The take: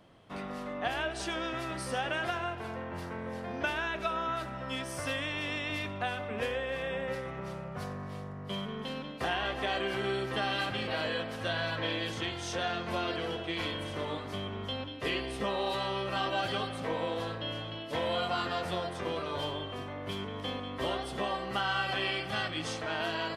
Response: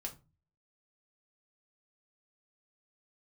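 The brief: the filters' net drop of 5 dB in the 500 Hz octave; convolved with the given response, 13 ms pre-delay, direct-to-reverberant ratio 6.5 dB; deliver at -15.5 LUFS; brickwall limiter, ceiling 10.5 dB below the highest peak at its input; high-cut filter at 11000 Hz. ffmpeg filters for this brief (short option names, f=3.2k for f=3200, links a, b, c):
-filter_complex "[0:a]lowpass=11k,equalizer=f=500:t=o:g=-6.5,alimiter=level_in=5dB:limit=-24dB:level=0:latency=1,volume=-5dB,asplit=2[a][b];[1:a]atrim=start_sample=2205,adelay=13[c];[b][c]afir=irnorm=-1:irlink=0,volume=-4.5dB[d];[a][d]amix=inputs=2:normalize=0,volume=22dB"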